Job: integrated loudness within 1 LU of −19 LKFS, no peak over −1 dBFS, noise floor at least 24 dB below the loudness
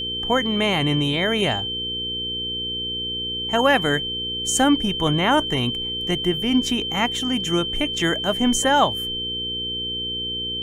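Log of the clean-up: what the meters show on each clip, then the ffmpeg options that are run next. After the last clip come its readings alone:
mains hum 60 Hz; hum harmonics up to 480 Hz; level of the hum −34 dBFS; interfering tone 3,100 Hz; level of the tone −25 dBFS; integrated loudness −21.0 LKFS; sample peak −5.0 dBFS; target loudness −19.0 LKFS
→ -af "bandreject=frequency=60:width_type=h:width=4,bandreject=frequency=120:width_type=h:width=4,bandreject=frequency=180:width_type=h:width=4,bandreject=frequency=240:width_type=h:width=4,bandreject=frequency=300:width_type=h:width=4,bandreject=frequency=360:width_type=h:width=4,bandreject=frequency=420:width_type=h:width=4,bandreject=frequency=480:width_type=h:width=4"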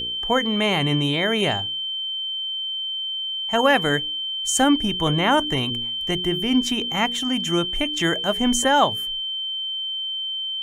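mains hum none found; interfering tone 3,100 Hz; level of the tone −25 dBFS
→ -af "bandreject=frequency=3100:width=30"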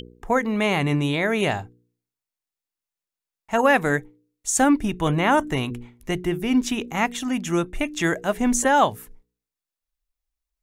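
interfering tone none found; integrated loudness −22.5 LKFS; sample peak −5.0 dBFS; target loudness −19.0 LKFS
→ -af "volume=3.5dB"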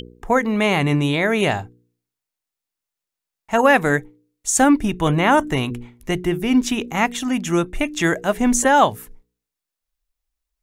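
integrated loudness −19.0 LKFS; sample peak −1.5 dBFS; background noise floor −86 dBFS

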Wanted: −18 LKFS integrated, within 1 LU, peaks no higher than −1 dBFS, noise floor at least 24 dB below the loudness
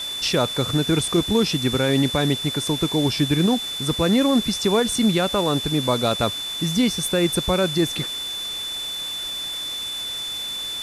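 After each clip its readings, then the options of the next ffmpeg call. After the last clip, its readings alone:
interfering tone 3,500 Hz; level of the tone −27 dBFS; background noise floor −30 dBFS; target noise floor −46 dBFS; integrated loudness −21.5 LKFS; sample peak −8.0 dBFS; target loudness −18.0 LKFS
→ -af "bandreject=frequency=3500:width=30"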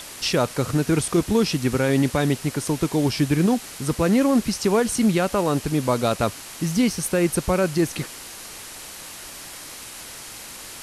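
interfering tone none found; background noise floor −39 dBFS; target noise floor −46 dBFS
→ -af "afftdn=noise_reduction=7:noise_floor=-39"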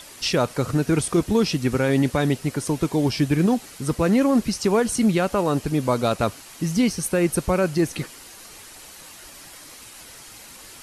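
background noise floor −44 dBFS; target noise floor −46 dBFS
→ -af "afftdn=noise_reduction=6:noise_floor=-44"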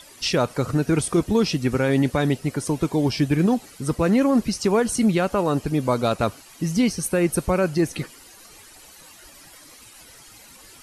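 background noise floor −47 dBFS; integrated loudness −22.0 LKFS; sample peak −9.5 dBFS; target loudness −18.0 LKFS
→ -af "volume=4dB"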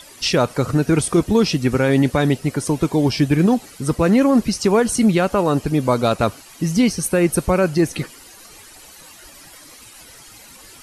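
integrated loudness −18.0 LKFS; sample peak −5.5 dBFS; background noise floor −43 dBFS

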